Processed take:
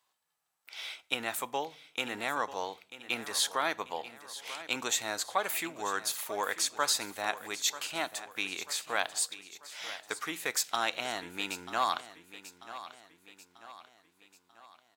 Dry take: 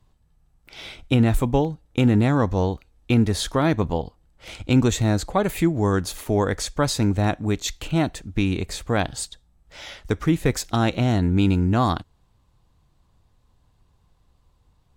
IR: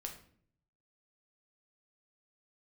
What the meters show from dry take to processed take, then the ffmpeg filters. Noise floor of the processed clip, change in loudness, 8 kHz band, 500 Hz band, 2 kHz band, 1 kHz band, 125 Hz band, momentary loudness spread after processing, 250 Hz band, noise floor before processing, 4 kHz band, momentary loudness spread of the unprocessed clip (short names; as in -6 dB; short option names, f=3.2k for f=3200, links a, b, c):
-73 dBFS, -11.0 dB, -0.5 dB, -13.5 dB, -2.5 dB, -5.5 dB, -36.0 dB, 15 LU, -24.5 dB, -63 dBFS, -1.5 dB, 13 LU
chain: -filter_complex "[0:a]highpass=960,highshelf=f=11k:g=7.5,aecho=1:1:940|1880|2820|3760:0.188|0.0904|0.0434|0.0208,asplit=2[a][b];[1:a]atrim=start_sample=2205,lowshelf=f=150:g=10.5[c];[b][c]afir=irnorm=-1:irlink=0,volume=-13.5dB[d];[a][d]amix=inputs=2:normalize=0,volume=-3.5dB"